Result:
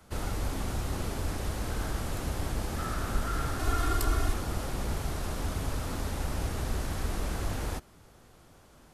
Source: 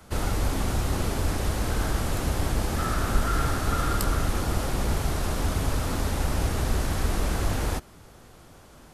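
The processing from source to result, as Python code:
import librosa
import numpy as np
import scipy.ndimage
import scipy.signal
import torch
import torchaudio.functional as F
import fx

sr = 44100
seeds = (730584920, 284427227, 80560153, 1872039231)

y = fx.comb(x, sr, ms=2.8, depth=0.95, at=(3.59, 4.34))
y = F.gain(torch.from_numpy(y), -6.5).numpy()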